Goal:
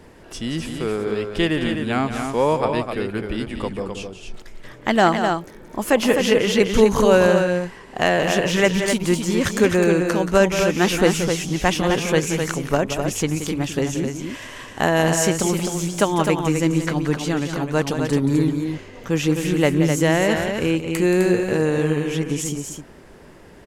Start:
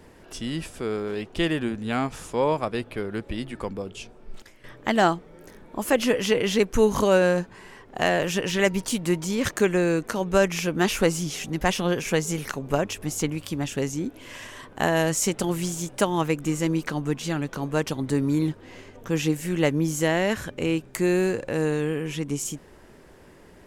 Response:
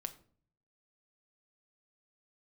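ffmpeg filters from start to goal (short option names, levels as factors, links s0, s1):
-af "highshelf=f=9400:g=-4,aecho=1:1:177.8|256.6:0.316|0.501,volume=1.58"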